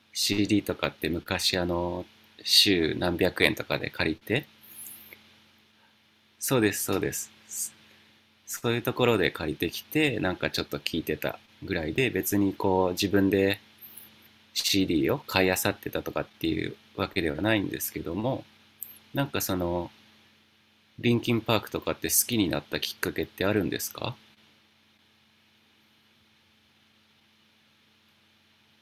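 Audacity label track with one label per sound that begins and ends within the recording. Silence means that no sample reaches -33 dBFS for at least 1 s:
6.420000	19.860000	sound
20.990000	24.110000	sound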